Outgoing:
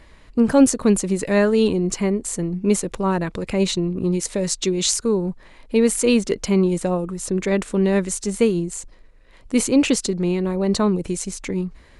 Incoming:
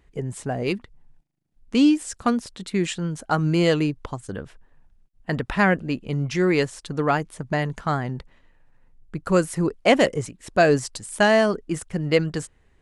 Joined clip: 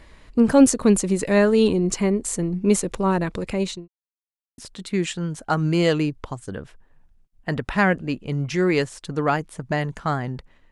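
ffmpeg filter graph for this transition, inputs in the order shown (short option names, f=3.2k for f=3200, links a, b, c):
-filter_complex "[0:a]apad=whole_dur=10.71,atrim=end=10.71,asplit=2[a][b];[a]atrim=end=3.88,asetpts=PTS-STARTPTS,afade=t=out:st=3.22:d=0.66:c=qsin[c];[b]atrim=start=3.88:end=4.58,asetpts=PTS-STARTPTS,volume=0[d];[1:a]atrim=start=2.39:end=8.52,asetpts=PTS-STARTPTS,afade=t=in:d=0.004:c=hsin[e];[c][d][e]concat=n=3:v=0:a=1"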